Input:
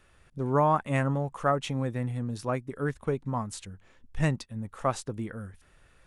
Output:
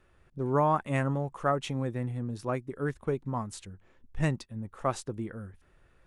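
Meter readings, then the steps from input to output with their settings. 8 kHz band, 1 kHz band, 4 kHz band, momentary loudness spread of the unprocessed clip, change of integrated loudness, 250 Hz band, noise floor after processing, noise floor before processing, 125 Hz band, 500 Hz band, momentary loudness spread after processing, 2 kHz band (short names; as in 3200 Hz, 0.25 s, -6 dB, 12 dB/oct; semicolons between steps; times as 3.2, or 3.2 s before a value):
-3.0 dB, -2.0 dB, -2.5 dB, 16 LU, -1.5 dB, -1.5 dB, -64 dBFS, -61 dBFS, -2.0 dB, -1.5 dB, 17 LU, -2.0 dB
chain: bell 360 Hz +5 dB 0.26 oct; mismatched tape noise reduction decoder only; gain -2 dB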